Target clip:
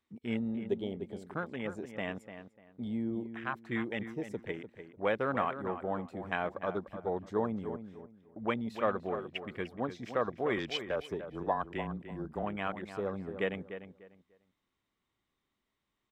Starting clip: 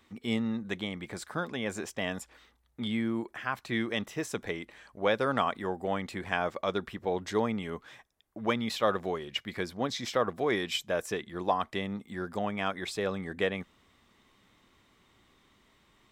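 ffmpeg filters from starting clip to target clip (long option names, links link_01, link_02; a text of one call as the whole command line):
ffmpeg -i in.wav -filter_complex "[0:a]afwtdn=0.0158,asettb=1/sr,asplit=3[link_01][link_02][link_03];[link_01]atrim=end=0.574[link_04];[link_02]atrim=start=0.57:end=1.01,asetpts=PTS-STARTPTS,afade=type=in:duration=0.004:curve=qsin,afade=type=out:start_time=0.436:duration=0.004:curve=qsin,equalizer=frequency=400:width_type=o:width=0.33:gain=12,equalizer=frequency=630:width_type=o:width=0.33:gain=4,equalizer=frequency=3150:width_type=o:width=0.33:gain=10[link_05];[link_03]atrim=start=1.006[link_06];[link_04][link_05]acrossfade=duration=0.004:curve1=hsin:curve2=qsin[link_07];[link_07][link_06]acrossfade=duration=0.004:curve1=qsin:curve2=hsin,asettb=1/sr,asplit=3[link_08][link_09][link_10];[link_08]atrim=end=10.564[link_11];[link_09]atrim=start=10.56:end=12.43,asetpts=PTS-STARTPTS,afade=type=in:duration=0.004:curve=qsin,afade=type=out:start_time=1.866:duration=0.004:curve=qsin,afreqshift=-21[link_12];[link_10]atrim=start=12.426[link_13];[link_11][link_12]acrossfade=duration=0.004:curve1=hsin:curve2=qsin[link_14];[link_14][link_13]acrossfade=duration=0.004:curve1=qsin:curve2=hsin,asplit=2[link_15][link_16];[link_16]adelay=297,lowpass=frequency=2400:poles=1,volume=-10dB,asplit=2[link_17][link_18];[link_18]adelay=297,lowpass=frequency=2400:poles=1,volume=0.25,asplit=2[link_19][link_20];[link_20]adelay=297,lowpass=frequency=2400:poles=1,volume=0.25[link_21];[link_15][link_17][link_19][link_21]amix=inputs=4:normalize=0,volume=-3.5dB" out.wav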